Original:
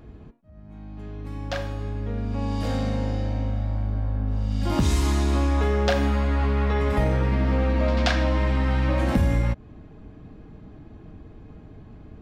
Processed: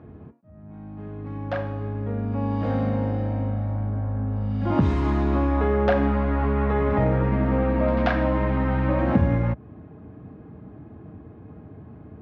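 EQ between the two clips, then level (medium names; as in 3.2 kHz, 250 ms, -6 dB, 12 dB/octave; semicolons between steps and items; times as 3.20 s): high-pass 77 Hz 24 dB/octave; low-pass 1.6 kHz 12 dB/octave; +3.0 dB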